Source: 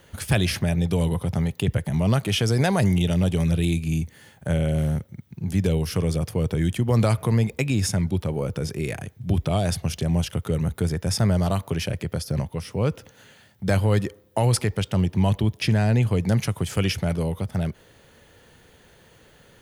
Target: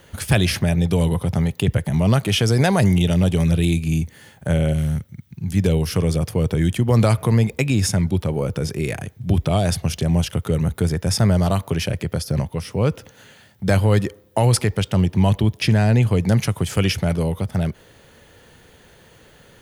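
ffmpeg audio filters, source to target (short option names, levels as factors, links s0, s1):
-filter_complex "[0:a]asettb=1/sr,asplit=3[s0][s1][s2];[s0]atrim=end=4.734[s3];[s1]atrim=start=4.73:end=5.57,asetpts=PTS-STARTPTS,afade=t=in:d=0.004:c=qsin,afade=t=out:st=0.836:d=0.004:c=qsin,equalizer=f=540:t=o:w=2:g=-10[s4];[s2]atrim=start=5.566[s5];[s3][s4]acrossfade=d=0.004:c1=hsin:c2=qsin[s6];[s6][s5]acrossfade=d=0.004:c1=qsin:c2=hsin,volume=1.58"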